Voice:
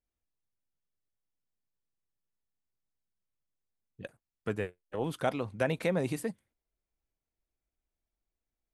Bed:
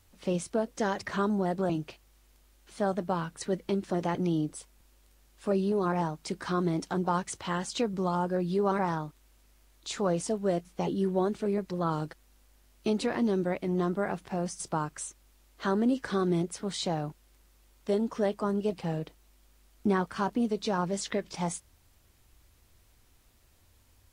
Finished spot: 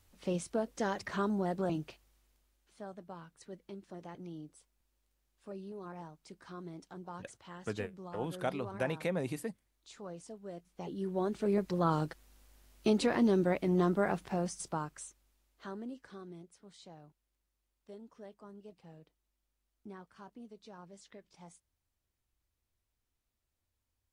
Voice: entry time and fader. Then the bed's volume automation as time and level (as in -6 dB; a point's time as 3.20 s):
3.20 s, -4.5 dB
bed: 1.87 s -4.5 dB
2.87 s -17.5 dB
10.50 s -17.5 dB
11.57 s 0 dB
14.19 s 0 dB
16.39 s -22.5 dB